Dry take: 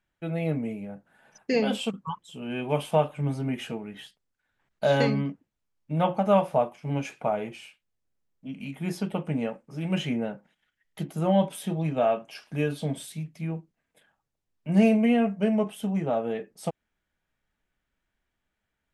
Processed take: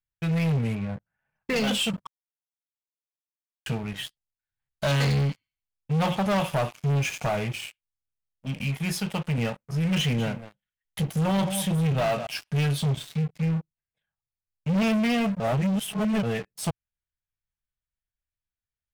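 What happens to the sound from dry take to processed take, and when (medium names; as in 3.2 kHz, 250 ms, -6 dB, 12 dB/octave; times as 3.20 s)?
0.75–1.56 s: low-pass 2.5 kHz 24 dB/octave
2.07–3.66 s: mute
5.00–7.44 s: feedback echo behind a high-pass 85 ms, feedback 36%, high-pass 2.8 kHz, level -4.5 dB
8.77–9.38 s: bass shelf 330 Hz -7.5 dB
9.98–12.27 s: delay 200 ms -14.5 dB
12.88–14.88 s: distance through air 130 m
15.40–16.23 s: reverse
whole clip: FFT filter 120 Hz 0 dB, 280 Hz -20 dB, 2.7 kHz -7 dB; waveshaping leveller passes 5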